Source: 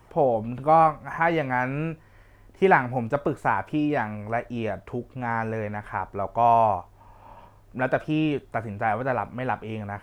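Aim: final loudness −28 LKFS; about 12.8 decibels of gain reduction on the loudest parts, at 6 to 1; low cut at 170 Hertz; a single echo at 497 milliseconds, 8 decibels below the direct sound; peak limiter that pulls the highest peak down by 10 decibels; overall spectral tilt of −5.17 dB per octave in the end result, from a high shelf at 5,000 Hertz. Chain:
high-pass filter 170 Hz
high-shelf EQ 5,000 Hz +8.5 dB
downward compressor 6 to 1, threshold −27 dBFS
brickwall limiter −23 dBFS
single-tap delay 497 ms −8 dB
level +7 dB

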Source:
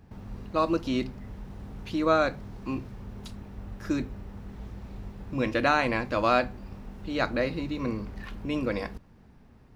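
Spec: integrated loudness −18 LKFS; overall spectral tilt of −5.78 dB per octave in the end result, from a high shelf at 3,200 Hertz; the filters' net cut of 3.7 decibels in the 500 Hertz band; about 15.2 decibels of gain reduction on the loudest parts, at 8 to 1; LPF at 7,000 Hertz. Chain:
low-pass filter 7,000 Hz
parametric band 500 Hz −4.5 dB
high-shelf EQ 3,200 Hz −5 dB
downward compressor 8 to 1, threshold −36 dBFS
level +24 dB

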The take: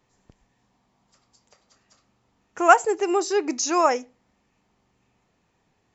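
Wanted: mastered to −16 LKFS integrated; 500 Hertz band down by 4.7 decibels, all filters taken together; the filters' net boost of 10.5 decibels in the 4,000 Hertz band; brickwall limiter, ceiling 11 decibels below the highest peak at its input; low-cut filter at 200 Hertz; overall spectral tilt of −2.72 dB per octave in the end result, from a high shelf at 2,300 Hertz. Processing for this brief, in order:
high-pass filter 200 Hz
parametric band 500 Hz −7.5 dB
high-shelf EQ 2,300 Hz +7 dB
parametric band 4,000 Hz +7.5 dB
level +7.5 dB
brickwall limiter −4.5 dBFS

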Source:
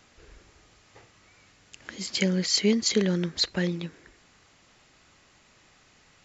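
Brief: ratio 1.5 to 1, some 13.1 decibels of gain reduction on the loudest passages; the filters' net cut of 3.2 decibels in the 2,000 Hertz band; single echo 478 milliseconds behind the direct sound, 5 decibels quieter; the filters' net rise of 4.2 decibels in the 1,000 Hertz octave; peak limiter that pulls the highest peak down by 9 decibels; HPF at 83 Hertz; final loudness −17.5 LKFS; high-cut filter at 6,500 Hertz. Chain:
high-pass filter 83 Hz
low-pass filter 6,500 Hz
parametric band 1,000 Hz +7 dB
parametric band 2,000 Hz −5.5 dB
downward compressor 1.5 to 1, threshold −55 dBFS
brickwall limiter −32 dBFS
single-tap delay 478 ms −5 dB
level +24 dB

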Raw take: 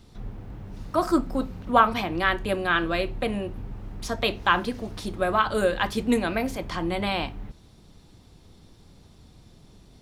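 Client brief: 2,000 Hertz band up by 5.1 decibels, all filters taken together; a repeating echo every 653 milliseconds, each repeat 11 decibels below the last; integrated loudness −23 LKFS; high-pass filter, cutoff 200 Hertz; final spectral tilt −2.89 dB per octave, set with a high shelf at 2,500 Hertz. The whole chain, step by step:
high-pass filter 200 Hz
parametric band 2,000 Hz +3.5 dB
high-shelf EQ 2,500 Hz +7.5 dB
repeating echo 653 ms, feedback 28%, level −11 dB

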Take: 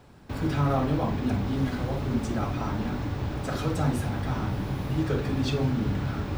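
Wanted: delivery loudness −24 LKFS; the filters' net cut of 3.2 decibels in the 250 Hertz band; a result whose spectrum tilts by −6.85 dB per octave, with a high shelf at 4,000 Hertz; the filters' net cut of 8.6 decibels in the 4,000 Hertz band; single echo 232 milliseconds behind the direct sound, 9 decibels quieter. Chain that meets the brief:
parametric band 250 Hz −4 dB
high-shelf EQ 4,000 Hz −7 dB
parametric band 4,000 Hz −7 dB
single-tap delay 232 ms −9 dB
level +5.5 dB

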